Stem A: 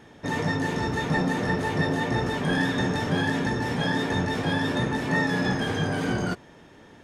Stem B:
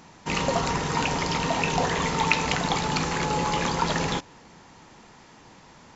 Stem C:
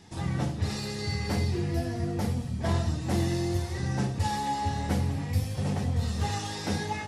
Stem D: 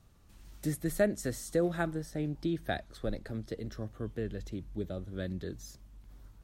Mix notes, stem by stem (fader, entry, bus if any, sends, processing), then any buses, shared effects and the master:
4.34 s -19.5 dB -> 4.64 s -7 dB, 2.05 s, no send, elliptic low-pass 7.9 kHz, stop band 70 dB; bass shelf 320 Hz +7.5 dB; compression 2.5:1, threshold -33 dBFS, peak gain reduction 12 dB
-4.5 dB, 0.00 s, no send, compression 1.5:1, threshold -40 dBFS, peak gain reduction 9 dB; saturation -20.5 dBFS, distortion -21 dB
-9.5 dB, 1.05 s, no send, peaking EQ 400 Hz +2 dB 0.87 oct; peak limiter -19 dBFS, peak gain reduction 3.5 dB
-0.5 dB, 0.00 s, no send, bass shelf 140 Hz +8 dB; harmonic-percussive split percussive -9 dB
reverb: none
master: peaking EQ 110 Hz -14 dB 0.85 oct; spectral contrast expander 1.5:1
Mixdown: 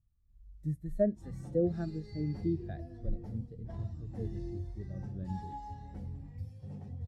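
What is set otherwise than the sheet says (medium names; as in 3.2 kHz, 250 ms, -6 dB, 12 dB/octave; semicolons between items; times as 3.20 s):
stem A: muted; stem B: muted; master: missing peaking EQ 110 Hz -14 dB 0.85 oct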